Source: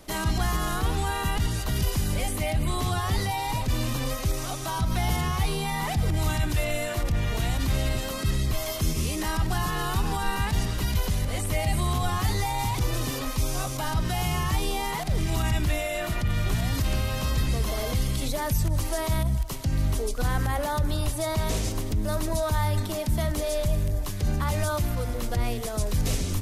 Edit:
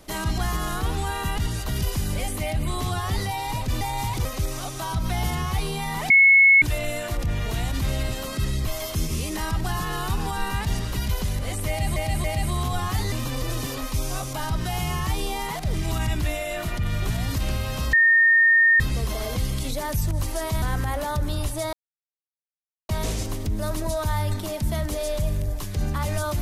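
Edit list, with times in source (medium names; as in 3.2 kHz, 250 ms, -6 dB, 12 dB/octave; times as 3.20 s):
3.81–4.11 s: swap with 12.42–12.86 s
5.96–6.48 s: bleep 2.19 kHz -10.5 dBFS
11.54–11.82 s: loop, 3 plays
17.37 s: add tone 1.83 kHz -13 dBFS 0.87 s
19.19–20.24 s: delete
21.35 s: insert silence 1.16 s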